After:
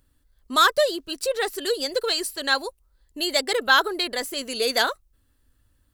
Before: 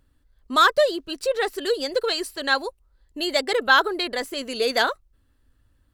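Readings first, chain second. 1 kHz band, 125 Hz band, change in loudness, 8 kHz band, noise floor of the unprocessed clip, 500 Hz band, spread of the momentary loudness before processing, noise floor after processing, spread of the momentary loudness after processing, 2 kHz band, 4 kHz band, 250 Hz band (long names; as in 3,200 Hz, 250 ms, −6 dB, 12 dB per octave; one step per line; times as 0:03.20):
−1.5 dB, can't be measured, −0.5 dB, +5.5 dB, −65 dBFS, −2.0 dB, 10 LU, −67 dBFS, 10 LU, −1.0 dB, +1.5 dB, −2.0 dB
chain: high-shelf EQ 5,200 Hz +10.5 dB
level −2 dB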